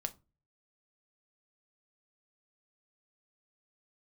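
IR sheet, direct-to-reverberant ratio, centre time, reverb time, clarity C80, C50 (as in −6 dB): 8.0 dB, 4 ms, 0.30 s, 27.0 dB, 20.5 dB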